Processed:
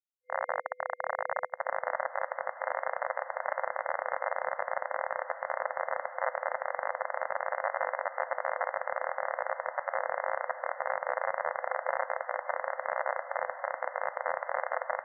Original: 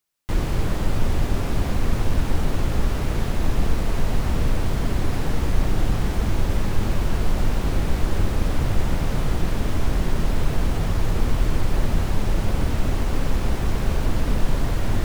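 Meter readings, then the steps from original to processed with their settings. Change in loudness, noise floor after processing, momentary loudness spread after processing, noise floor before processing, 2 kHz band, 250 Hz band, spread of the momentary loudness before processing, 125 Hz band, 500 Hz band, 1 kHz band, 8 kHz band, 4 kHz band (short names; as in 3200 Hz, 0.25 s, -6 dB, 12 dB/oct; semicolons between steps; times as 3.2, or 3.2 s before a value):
-8.5 dB, -48 dBFS, 2 LU, -25 dBFS, +1.0 dB, under -40 dB, 1 LU, under -40 dB, -1.5 dB, +2.0 dB, under -40 dB, under -40 dB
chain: Schmitt trigger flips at -17.5 dBFS; diffused feedback echo 1.623 s, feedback 46%, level -10.5 dB; FFT band-pass 500–2100 Hz; gain +3.5 dB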